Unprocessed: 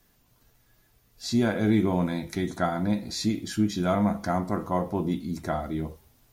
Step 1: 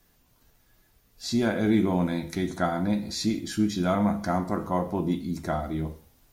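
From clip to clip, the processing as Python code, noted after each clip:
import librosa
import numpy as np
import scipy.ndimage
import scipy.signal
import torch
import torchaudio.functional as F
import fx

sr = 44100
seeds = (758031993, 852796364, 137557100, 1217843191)

y = fx.rev_gated(x, sr, seeds[0], gate_ms=200, shape='falling', drr_db=11.5)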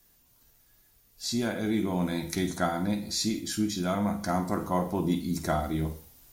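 y = fx.high_shelf(x, sr, hz=4300.0, db=10.5)
y = fx.rider(y, sr, range_db=10, speed_s=0.5)
y = fx.doubler(y, sr, ms=50.0, db=-13.0)
y = y * librosa.db_to_amplitude(-3.0)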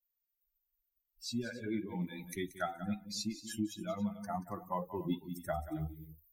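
y = fx.bin_expand(x, sr, power=3.0)
y = fx.echo_multitap(y, sr, ms=(180, 274), db=(-14.5, -18.5))
y = fx.band_squash(y, sr, depth_pct=40)
y = y * librosa.db_to_amplitude(-3.0)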